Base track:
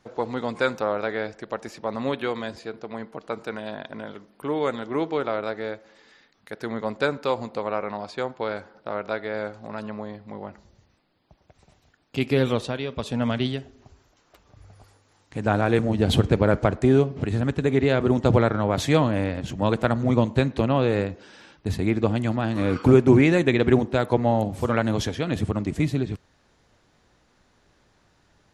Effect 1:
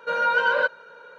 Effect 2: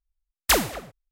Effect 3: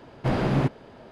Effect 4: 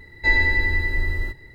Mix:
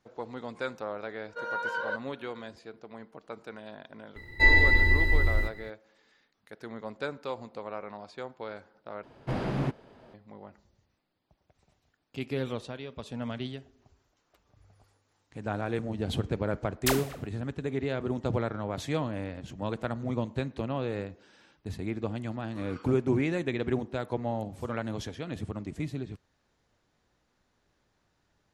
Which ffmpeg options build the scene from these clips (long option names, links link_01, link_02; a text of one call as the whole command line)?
ffmpeg -i bed.wav -i cue0.wav -i cue1.wav -i cue2.wav -i cue3.wav -filter_complex "[0:a]volume=-11dB[link_01];[1:a]equalizer=frequency=2500:width_type=o:width=0.46:gain=-8.5[link_02];[4:a]bandreject=frequency=1700:width=6.6[link_03];[link_01]asplit=2[link_04][link_05];[link_04]atrim=end=9.034[link_06];[3:a]atrim=end=1.11,asetpts=PTS-STARTPTS,volume=-7dB[link_07];[link_05]atrim=start=10.136[link_08];[link_02]atrim=end=1.18,asetpts=PTS-STARTPTS,volume=-11dB,afade=type=in:duration=0.004:curve=hsin,afade=type=out:start_time=1.176:duration=0.004:curve=hsin,adelay=1290[link_09];[link_03]atrim=end=1.54,asetpts=PTS-STARTPTS,volume=-0.5dB,afade=type=in:duration=0.004:curve=hsin,afade=type=out:start_time=1.536:duration=0.004:curve=hsin,adelay=4160[link_10];[2:a]atrim=end=1.11,asetpts=PTS-STARTPTS,volume=-8.5dB,afade=type=in:duration=0.004:curve=hsin,afade=type=out:start_time=1.106:duration=0.004:curve=hsin,adelay=16370[link_11];[link_06][link_07]acrossfade=duration=0.004:curve1=hsin:curve2=hsin[link_12];[link_12][link_08]acrossfade=duration=0.004:curve1=hsin:curve2=hsin[link_13];[link_13][link_09][link_10][link_11]amix=inputs=4:normalize=0" out.wav